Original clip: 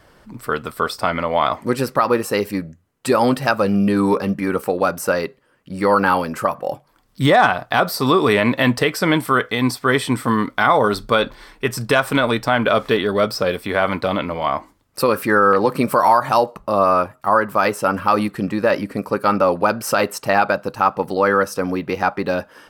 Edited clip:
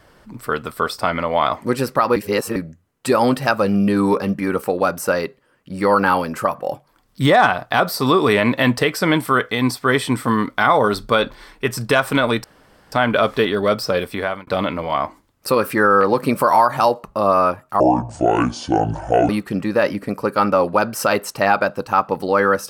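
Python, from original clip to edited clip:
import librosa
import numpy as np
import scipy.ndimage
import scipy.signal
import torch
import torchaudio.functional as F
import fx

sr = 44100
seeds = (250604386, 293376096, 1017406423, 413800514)

y = fx.edit(x, sr, fx.reverse_span(start_s=2.16, length_s=0.4),
    fx.insert_room_tone(at_s=12.44, length_s=0.48),
    fx.fade_out_span(start_s=13.65, length_s=0.34),
    fx.speed_span(start_s=17.32, length_s=0.85, speed=0.57), tone=tone)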